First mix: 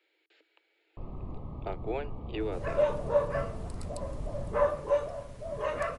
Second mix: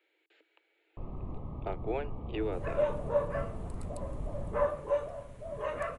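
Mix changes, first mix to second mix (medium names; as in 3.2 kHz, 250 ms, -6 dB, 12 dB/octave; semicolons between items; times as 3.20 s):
second sound -3.0 dB; master: add peaking EQ 5 kHz -9 dB 0.75 oct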